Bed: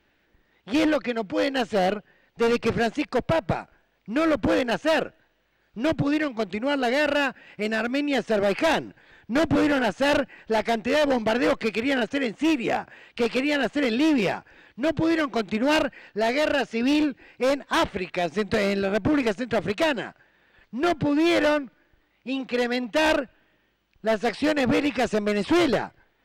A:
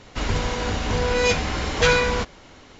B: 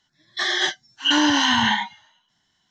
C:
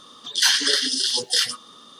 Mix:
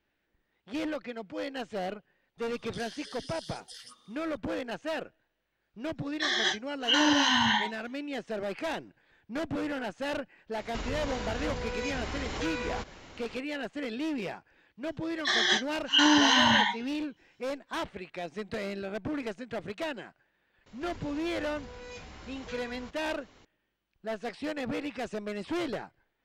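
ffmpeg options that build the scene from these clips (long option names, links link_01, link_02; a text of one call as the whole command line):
ffmpeg -i bed.wav -i cue0.wav -i cue1.wav -i cue2.wav -filter_complex "[2:a]asplit=2[link_01][link_02];[1:a]asplit=2[link_03][link_04];[0:a]volume=-12dB[link_05];[3:a]acompressor=threshold=-27dB:ratio=6:attack=3.2:release=140:knee=1:detection=peak[link_06];[link_03]acompressor=threshold=-29dB:ratio=6:attack=3.2:release=140:knee=1:detection=peak[link_07];[link_04]acompressor=threshold=-44dB:ratio=2:attack=3:release=47:knee=1:detection=peak[link_08];[link_06]atrim=end=1.99,asetpts=PTS-STARTPTS,volume=-16.5dB,afade=type=in:duration=0.004:curve=hsin,afade=type=out:start_time=1.986:duration=0.004:curve=hsin,adelay=2380[link_09];[link_01]atrim=end=2.7,asetpts=PTS-STARTPTS,volume=-6dB,afade=type=in:duration=0.004:curve=hsin,afade=type=out:start_time=2.696:duration=0.004:curve=hsin,adelay=5830[link_10];[link_07]atrim=end=2.79,asetpts=PTS-STARTPTS,volume=-3dB,afade=type=in:duration=0.004:curve=hsin,afade=type=out:start_time=2.786:duration=0.004:curve=hsin,adelay=10590[link_11];[link_02]atrim=end=2.7,asetpts=PTS-STARTPTS,volume=-3.5dB,afade=type=in:duration=0.004:curve=hsin,afade=type=out:start_time=2.696:duration=0.004:curve=hsin,adelay=14880[link_12];[link_08]atrim=end=2.79,asetpts=PTS-STARTPTS,volume=-10.5dB,afade=type=in:duration=0.004:curve=hsin,afade=type=out:start_time=2.786:duration=0.004:curve=hsin,adelay=20660[link_13];[link_05][link_09][link_10][link_11][link_12][link_13]amix=inputs=6:normalize=0" out.wav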